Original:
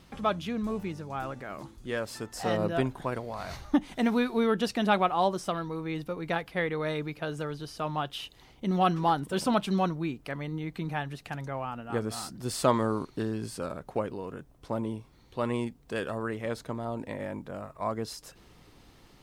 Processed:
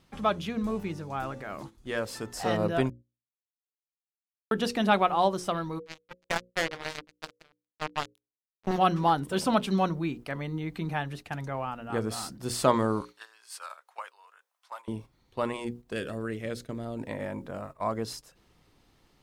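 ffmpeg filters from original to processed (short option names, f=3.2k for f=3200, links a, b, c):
-filter_complex "[0:a]asplit=3[a][b][c];[a]afade=t=out:st=5.78:d=0.02[d];[b]acrusher=bits=3:mix=0:aa=0.5,afade=t=in:st=5.78:d=0.02,afade=t=out:st=8.77:d=0.02[e];[c]afade=t=in:st=8.77:d=0.02[f];[d][e][f]amix=inputs=3:normalize=0,asettb=1/sr,asplit=3[g][h][i];[g]atrim=end=13.014[j];[h]atrim=start=13.01:end=14.88,asetpts=PTS-STARTPTS,afade=t=in:d=0.004:c=qsin,afade=t=out:st=1.866:d=0.004:c=qsin,highpass=f=940:w=0.5412,highpass=f=940:w=1.3066[k];[i]atrim=start=14.876[l];[j][k]acrossfade=d=0.004:c1=hsin:c2=qsin[m];[m][l]acrossfade=d=0.004:c1=qsin:c2=hsin,asettb=1/sr,asplit=3[n][o][p];[n]atrim=end=15.934[q];[o]atrim=start=15.93:end=16.99,asetpts=PTS-STARTPTS,afade=t=in:d=0.004:c=qsin,afade=t=out:st=1.056:d=0.004:c=qsin,equalizer=f=940:w=1.5:g=-13[r];[p]atrim=start=16.986[s];[q][r]acrossfade=d=0.004:c1=hsin:c2=qsin[t];[t][s]acrossfade=d=0.004:c1=qsin:c2=hsin,asplit=3[u][v][w];[u]atrim=end=2.9,asetpts=PTS-STARTPTS,afade=t=out:st=2.896:d=0.004:c=hsin[x];[v]atrim=start=2.9:end=4.51,asetpts=PTS-STARTPTS,volume=0[y];[w]atrim=start=4.51,asetpts=PTS-STARTPTS,afade=t=in:d=0.004:c=hsin[z];[x][y][z]concat=n=3:v=0:a=1,bandreject=f=60:t=h:w=6,bandreject=f=120:t=h:w=6,bandreject=f=180:t=h:w=6,bandreject=f=240:t=h:w=6,bandreject=f=300:t=h:w=6,bandreject=f=360:t=h:w=6,bandreject=f=420:t=h:w=6,bandreject=f=480:t=h:w=6,bandreject=f=540:t=h:w=6,agate=range=-9dB:threshold=-44dB:ratio=16:detection=peak,volume=1.5dB"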